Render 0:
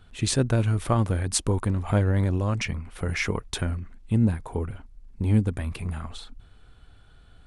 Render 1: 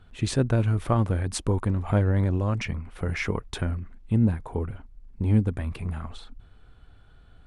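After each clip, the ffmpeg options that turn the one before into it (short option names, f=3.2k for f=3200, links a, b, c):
-af "highshelf=f=3.5k:g=-9"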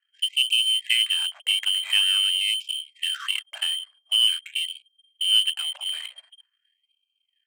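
-af "lowpass=f=2.7k:t=q:w=0.5098,lowpass=f=2.7k:t=q:w=0.6013,lowpass=f=2.7k:t=q:w=0.9,lowpass=f=2.7k:t=q:w=2.563,afreqshift=-3200,adynamicsmooth=sensitivity=8:basefreq=580,afftfilt=real='re*gte(b*sr/1024,470*pow(2300/470,0.5+0.5*sin(2*PI*0.46*pts/sr)))':imag='im*gte(b*sr/1024,470*pow(2300/470,0.5+0.5*sin(2*PI*0.46*pts/sr)))':win_size=1024:overlap=0.75"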